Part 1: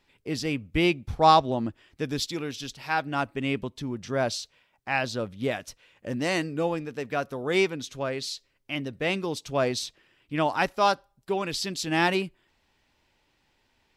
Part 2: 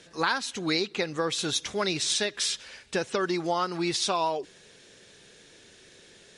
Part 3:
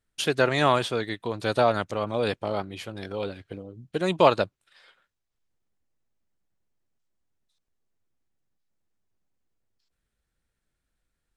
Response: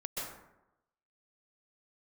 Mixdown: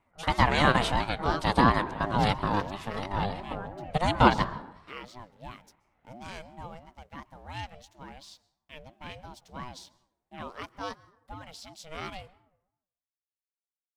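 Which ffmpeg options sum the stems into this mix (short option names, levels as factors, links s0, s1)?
-filter_complex "[0:a]aeval=exprs='sgn(val(0))*max(abs(val(0))-0.00266,0)':c=same,volume=0.237,asplit=3[s0][s1][s2];[s1]volume=0.0794[s3];[1:a]lowpass=f=1900:w=0.5412,lowpass=f=1900:w=1.3066,volume=0.251[s4];[2:a]dynaudnorm=f=180:g=3:m=1.88,volume=0.794,asplit=2[s5][s6];[s6]volume=0.15[s7];[s2]apad=whole_len=501300[s8];[s5][s8]sidechaingate=range=0.178:threshold=0.00141:ratio=16:detection=peak[s9];[3:a]atrim=start_sample=2205[s10];[s3][s7]amix=inputs=2:normalize=0[s11];[s11][s10]afir=irnorm=-1:irlink=0[s12];[s0][s4][s9][s12]amix=inputs=4:normalize=0,highpass=43,aeval=exprs='val(0)*sin(2*PI*400*n/s+400*0.25/2.9*sin(2*PI*2.9*n/s))':c=same"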